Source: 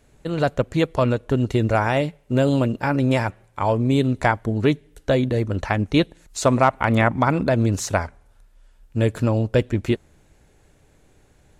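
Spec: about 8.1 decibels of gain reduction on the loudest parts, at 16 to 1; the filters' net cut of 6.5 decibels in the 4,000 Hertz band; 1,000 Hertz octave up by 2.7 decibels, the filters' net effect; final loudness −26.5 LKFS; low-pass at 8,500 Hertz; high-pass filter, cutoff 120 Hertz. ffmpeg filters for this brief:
ffmpeg -i in.wav -af "highpass=120,lowpass=8500,equalizer=frequency=1000:width_type=o:gain=4,equalizer=frequency=4000:width_type=o:gain=-9,acompressor=threshold=-18dB:ratio=16,volume=-1dB" out.wav

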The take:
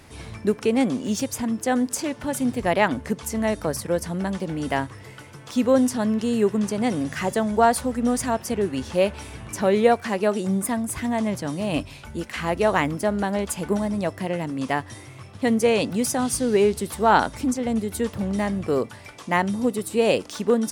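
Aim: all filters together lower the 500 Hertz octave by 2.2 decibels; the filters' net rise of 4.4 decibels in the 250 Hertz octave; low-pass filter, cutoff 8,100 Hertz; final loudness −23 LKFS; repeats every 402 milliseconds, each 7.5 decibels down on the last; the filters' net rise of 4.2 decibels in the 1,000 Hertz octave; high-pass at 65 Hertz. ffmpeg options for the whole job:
ffmpeg -i in.wav -af "highpass=65,lowpass=8100,equalizer=frequency=250:width_type=o:gain=6,equalizer=frequency=500:width_type=o:gain=-6.5,equalizer=frequency=1000:width_type=o:gain=7.5,aecho=1:1:402|804|1206|1608|2010:0.422|0.177|0.0744|0.0312|0.0131,volume=-2.5dB" out.wav

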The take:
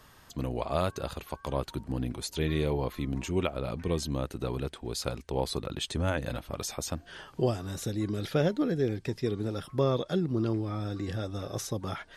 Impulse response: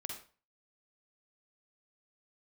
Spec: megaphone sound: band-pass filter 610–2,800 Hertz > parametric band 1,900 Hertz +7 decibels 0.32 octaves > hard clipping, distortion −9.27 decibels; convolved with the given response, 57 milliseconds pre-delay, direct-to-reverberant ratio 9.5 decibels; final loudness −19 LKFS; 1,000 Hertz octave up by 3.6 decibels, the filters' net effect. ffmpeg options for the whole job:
-filter_complex "[0:a]equalizer=frequency=1000:width_type=o:gain=5.5,asplit=2[link_01][link_02];[1:a]atrim=start_sample=2205,adelay=57[link_03];[link_02][link_03]afir=irnorm=-1:irlink=0,volume=-8dB[link_04];[link_01][link_04]amix=inputs=2:normalize=0,highpass=610,lowpass=2800,equalizer=frequency=1900:width_type=o:width=0.32:gain=7,asoftclip=type=hard:threshold=-28.5dB,volume=19.5dB"

